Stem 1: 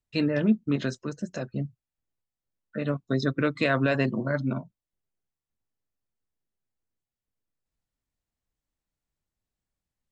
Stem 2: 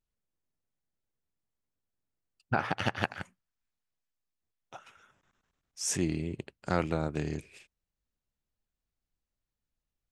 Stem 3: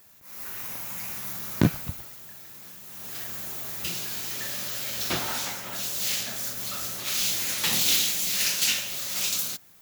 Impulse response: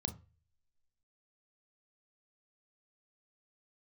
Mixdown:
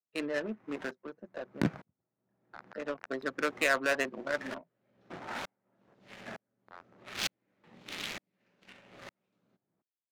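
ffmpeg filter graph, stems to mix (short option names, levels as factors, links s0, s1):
-filter_complex "[0:a]highpass=470,volume=0.708[s0];[1:a]highpass=f=1000:w=0.5412,highpass=f=1000:w=1.3066,acrusher=bits=4:mix=0:aa=0.000001,lowpass=2100,volume=0.237[s1];[2:a]aeval=exprs='val(0)*pow(10,-40*if(lt(mod(-1.1*n/s,1),2*abs(-1.1)/1000),1-mod(-1.1*n/s,1)/(2*abs(-1.1)/1000),(mod(-1.1*n/s,1)-2*abs(-1.1)/1000)/(1-2*abs(-1.1)/1000))/20)':c=same,volume=1.19[s2];[s0][s1][s2]amix=inputs=3:normalize=0,highpass=180,adynamicequalizer=threshold=0.00158:dfrequency=2000:dqfactor=1.6:tfrequency=2000:tqfactor=1.6:attack=5:release=100:ratio=0.375:range=2.5:mode=boostabove:tftype=bell,adynamicsmooth=sensitivity=3.5:basefreq=550"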